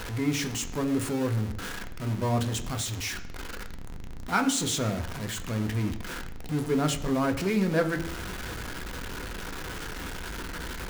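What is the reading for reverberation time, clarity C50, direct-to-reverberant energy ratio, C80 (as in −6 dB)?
0.70 s, 12.5 dB, 5.0 dB, 14.5 dB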